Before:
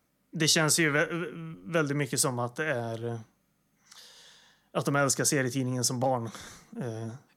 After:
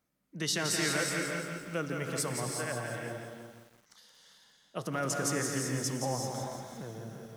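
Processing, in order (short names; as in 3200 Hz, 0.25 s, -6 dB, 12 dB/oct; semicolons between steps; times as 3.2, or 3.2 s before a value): non-linear reverb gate 0.41 s rising, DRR 3 dB; lo-fi delay 0.171 s, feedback 55%, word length 8-bit, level -6 dB; gain -8 dB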